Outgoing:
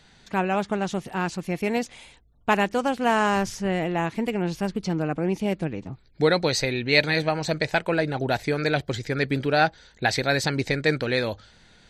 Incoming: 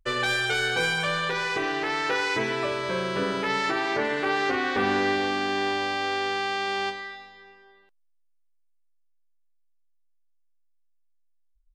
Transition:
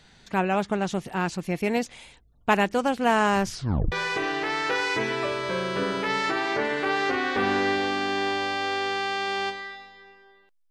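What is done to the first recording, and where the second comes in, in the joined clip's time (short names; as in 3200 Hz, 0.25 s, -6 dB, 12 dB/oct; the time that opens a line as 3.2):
outgoing
3.5 tape stop 0.42 s
3.92 switch to incoming from 1.32 s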